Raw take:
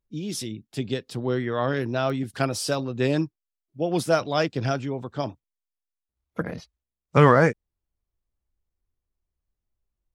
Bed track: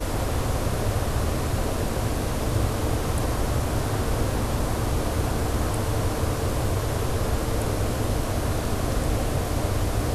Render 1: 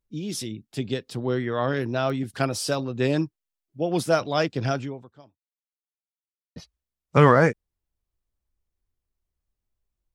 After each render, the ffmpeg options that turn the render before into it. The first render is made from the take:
-filter_complex "[0:a]asplit=2[a][b];[a]atrim=end=6.56,asetpts=PTS-STARTPTS,afade=t=out:st=4.83:d=1.73:c=exp[c];[b]atrim=start=6.56,asetpts=PTS-STARTPTS,afade=t=in:d=0.004:c=hsin[d];[c][d]concat=n=2:v=0:a=1"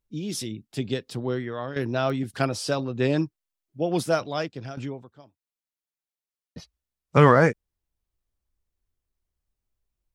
-filter_complex "[0:a]asettb=1/sr,asplit=3[a][b][c];[a]atrim=end=2.484[d];[b]atrim=start=2.48:end=3.18,asetpts=PTS-STARTPTS,afade=t=in:d=0.004:c=qsin,afade=t=out:st=0.696:d=0.004:c=qsin,highshelf=f=9.5k:g=-11.5[e];[c]atrim=start=3.176[f];[d][e]acrossfade=d=0.004:c1=hsin:c2=qsin[g];[g][f]acrossfade=d=0.004:c1=qsin:c2=hsin,asplit=3[h][i][j];[h]atrim=end=1.76,asetpts=PTS-STARTPTS,afade=t=out:st=1.11:d=0.65:silence=0.266073[k];[i]atrim=start=1.76:end=4.77,asetpts=PTS-STARTPTS,afade=t=in:d=0.004:c=hsin:silence=0.266073,afade=t=out:st=2.15:d=0.86:silence=0.177828[l];[j]atrim=start=4.77,asetpts=PTS-STARTPTS,afade=t=in:d=0.004:c=hsin:silence=0.177828[m];[k][l][m]concat=n=3:v=0:a=1"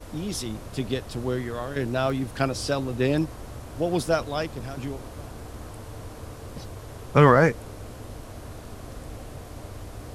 -filter_complex "[1:a]volume=-14.5dB[a];[0:a][a]amix=inputs=2:normalize=0"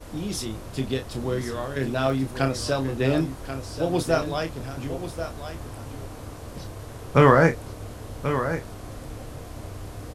-filter_complex "[0:a]asplit=2[a][b];[b]adelay=30,volume=-7.5dB[c];[a][c]amix=inputs=2:normalize=0,aecho=1:1:1085:0.316"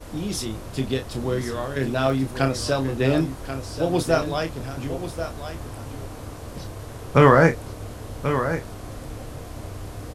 -af "volume=2dB,alimiter=limit=-1dB:level=0:latency=1"

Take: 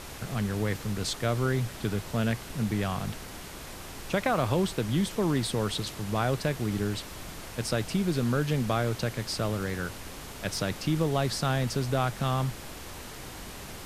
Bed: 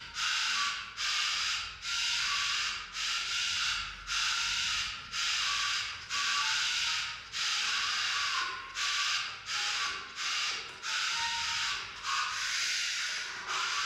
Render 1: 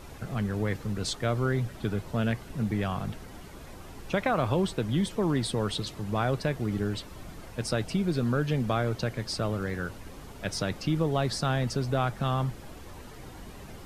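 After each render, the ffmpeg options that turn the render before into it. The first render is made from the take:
-af "afftdn=nr=10:nf=-42"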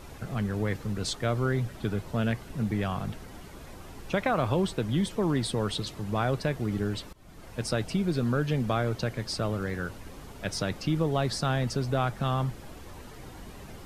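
-filter_complex "[0:a]asplit=2[a][b];[a]atrim=end=7.13,asetpts=PTS-STARTPTS,afade=t=out:st=7.126:d=0.004:c=hsin:silence=0.0794328[c];[b]atrim=start=7.13,asetpts=PTS-STARTPTS,afade=t=in:d=0.44:silence=0.0794328[d];[c][d]concat=n=2:v=0:a=1"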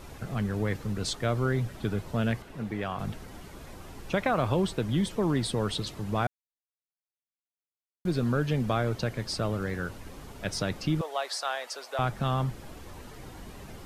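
-filter_complex "[0:a]asettb=1/sr,asplit=3[a][b][c];[a]atrim=end=2.424[d];[b]atrim=start=2.42:end=2.99,asetpts=PTS-STARTPTS,afade=t=in:d=0.004:c=qsin,afade=t=out:st=0.566:d=0.004:c=qsin,bass=f=250:g=-8,treble=f=4k:g=-7[e];[c]atrim=start=2.986[f];[d][e]acrossfade=d=0.004:c1=hsin:c2=qsin[g];[g][f]acrossfade=d=0.004:c1=qsin:c2=hsin,asettb=1/sr,asplit=3[h][i][j];[h]atrim=end=11.014[k];[i]atrim=start=11.01:end=11.99,asetpts=PTS-STARTPTS,afade=t=in:d=0.004:c=qsin,afade=t=out:st=0.976:d=0.004:c=qsin,highpass=f=580:w=0.5412,highpass=f=580:w=1.3066[l];[j]atrim=start=11.986[m];[k][l]acrossfade=d=0.004:c1=hsin:c2=qsin[n];[n][m]acrossfade=d=0.004:c1=qsin:c2=hsin,asplit=3[o][p][q];[o]atrim=end=6.27,asetpts=PTS-STARTPTS,afade=t=out:st=6.266:d=0.004:c=hsin[r];[p]atrim=start=6.27:end=8.05,asetpts=PTS-STARTPTS,volume=0[s];[q]atrim=start=8.05,asetpts=PTS-STARTPTS,afade=t=in:d=0.004:c=hsin[t];[r][s][t]concat=n=3:v=0:a=1"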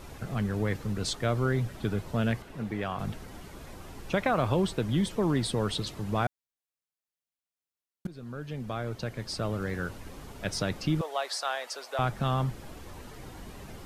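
-filter_complex "[0:a]asplit=2[a][b];[a]atrim=end=8.07,asetpts=PTS-STARTPTS,afade=t=out:st=8.066:d=0.004:c=hsin:silence=0.0944061[c];[b]atrim=start=8.07,asetpts=PTS-STARTPTS,afade=t=in:d=1.76:silence=0.0944061[d];[c][d]concat=n=2:v=0:a=1"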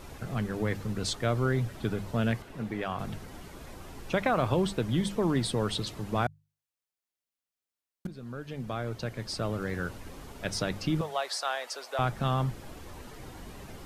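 -af "bandreject=f=50:t=h:w=6,bandreject=f=100:t=h:w=6,bandreject=f=150:t=h:w=6,bandreject=f=200:t=h:w=6"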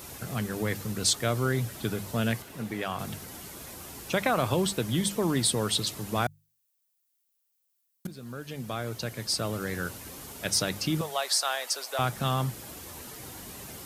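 -af "highpass=72,aemphasis=mode=production:type=75kf"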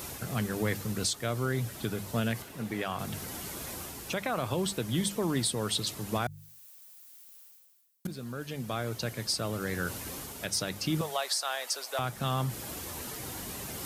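-af "areverse,acompressor=mode=upward:threshold=-33dB:ratio=2.5,areverse,alimiter=limit=-19dB:level=0:latency=1:release=459"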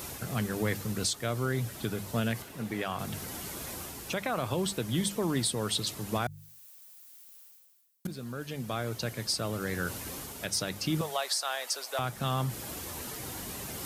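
-af anull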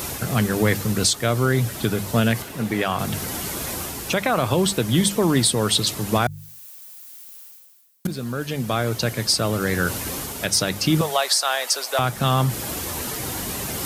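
-af "volume=11dB"

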